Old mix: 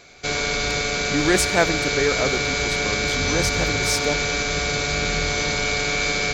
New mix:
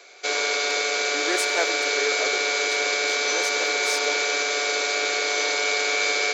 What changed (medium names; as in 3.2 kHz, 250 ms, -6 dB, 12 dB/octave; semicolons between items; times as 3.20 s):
speech -7.0 dB; master: add steep high-pass 350 Hz 36 dB/octave